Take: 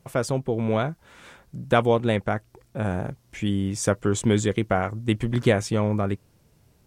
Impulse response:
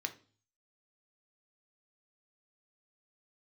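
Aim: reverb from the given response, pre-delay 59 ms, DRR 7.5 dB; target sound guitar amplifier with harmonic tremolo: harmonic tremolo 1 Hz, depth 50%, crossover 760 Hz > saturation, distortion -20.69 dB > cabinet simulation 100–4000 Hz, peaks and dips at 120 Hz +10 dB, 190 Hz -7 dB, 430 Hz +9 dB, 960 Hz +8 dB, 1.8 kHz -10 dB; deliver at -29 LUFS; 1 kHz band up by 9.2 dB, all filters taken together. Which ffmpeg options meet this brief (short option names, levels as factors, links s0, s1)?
-filter_complex "[0:a]equalizer=f=1000:t=o:g=8,asplit=2[s0][s1];[1:a]atrim=start_sample=2205,adelay=59[s2];[s1][s2]afir=irnorm=-1:irlink=0,volume=0.376[s3];[s0][s3]amix=inputs=2:normalize=0,acrossover=split=760[s4][s5];[s4]aeval=exprs='val(0)*(1-0.5/2+0.5/2*cos(2*PI*1*n/s))':c=same[s6];[s5]aeval=exprs='val(0)*(1-0.5/2-0.5/2*cos(2*PI*1*n/s))':c=same[s7];[s6][s7]amix=inputs=2:normalize=0,asoftclip=threshold=0.355,highpass=100,equalizer=f=120:t=q:w=4:g=10,equalizer=f=190:t=q:w=4:g=-7,equalizer=f=430:t=q:w=4:g=9,equalizer=f=960:t=q:w=4:g=8,equalizer=f=1800:t=q:w=4:g=-10,lowpass=f=4000:w=0.5412,lowpass=f=4000:w=1.3066,volume=0.473"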